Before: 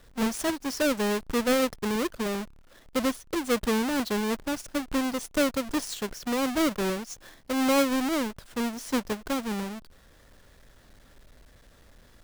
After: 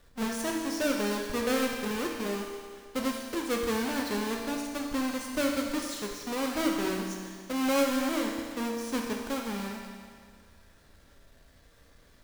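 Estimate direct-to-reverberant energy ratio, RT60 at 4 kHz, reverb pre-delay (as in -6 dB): 0.0 dB, 1.9 s, 11 ms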